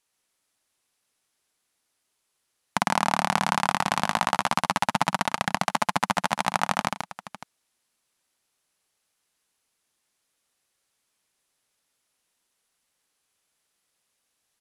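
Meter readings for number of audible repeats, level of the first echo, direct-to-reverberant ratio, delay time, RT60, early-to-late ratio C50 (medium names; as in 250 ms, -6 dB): 2, -5.0 dB, no reverb, 135 ms, no reverb, no reverb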